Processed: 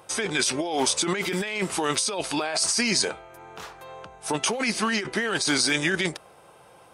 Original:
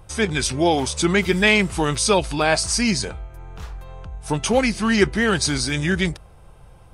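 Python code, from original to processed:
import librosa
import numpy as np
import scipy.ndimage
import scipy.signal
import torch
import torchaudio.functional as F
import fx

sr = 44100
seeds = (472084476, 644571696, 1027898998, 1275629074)

y = scipy.signal.sosfilt(scipy.signal.butter(2, 330.0, 'highpass', fs=sr, output='sos'), x)
y = fx.over_compress(y, sr, threshold_db=-25.0, ratio=-1.0)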